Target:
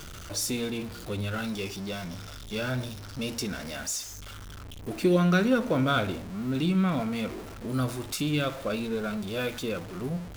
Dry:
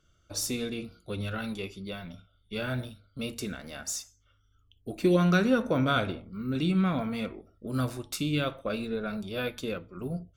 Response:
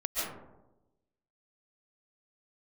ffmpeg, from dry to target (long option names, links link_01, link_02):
-filter_complex "[0:a]aeval=exprs='val(0)+0.5*0.015*sgn(val(0))':channel_layout=same,asettb=1/sr,asplit=3[link_01][link_02][link_03];[link_01]atrim=end=1.444[link_04];[link_02]atrim=start=1.44:end=3.76,asetpts=PTS-STARTPTS,afade=type=in:duration=0.004:curve=qsin,afade=type=out:start_time=2.316:duration=0.004:curve=qsin,equalizer=frequency=5400:width_type=o:width=0.28:gain=8[link_05];[link_03]atrim=start=3.756[link_06];[link_04][link_05]acrossfade=duration=0.004:curve1=hsin:curve2=qsin[link_07];[link_07][link_06]acrossfade=duration=0.004:curve1=qsin:curve2=hsin"